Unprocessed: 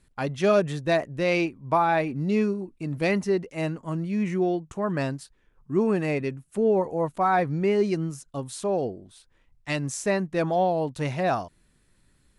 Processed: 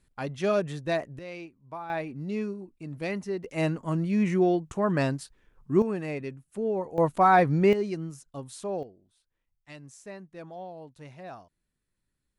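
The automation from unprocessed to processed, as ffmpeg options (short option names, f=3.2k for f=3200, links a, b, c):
-af "asetnsamples=n=441:p=0,asendcmd='1.19 volume volume -17dB;1.9 volume volume -8dB;3.44 volume volume 1.5dB;5.82 volume volume -7dB;6.98 volume volume 3dB;7.73 volume volume -6.5dB;8.83 volume volume -18dB',volume=-5dB"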